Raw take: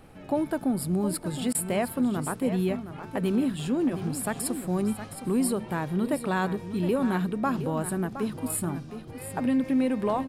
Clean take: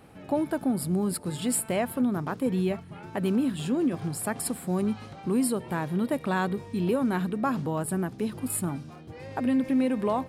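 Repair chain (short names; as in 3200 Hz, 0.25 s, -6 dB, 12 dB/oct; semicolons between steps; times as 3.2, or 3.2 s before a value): interpolate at 1.53, 17 ms; expander -33 dBFS, range -21 dB; inverse comb 0.716 s -11 dB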